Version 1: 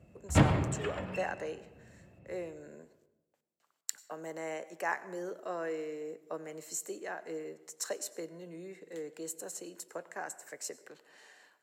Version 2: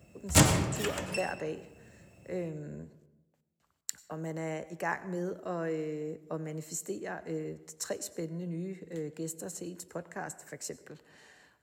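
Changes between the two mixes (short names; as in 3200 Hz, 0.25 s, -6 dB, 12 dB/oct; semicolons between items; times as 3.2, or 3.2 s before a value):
speech: remove HPF 410 Hz 12 dB/oct; background: remove air absorption 430 m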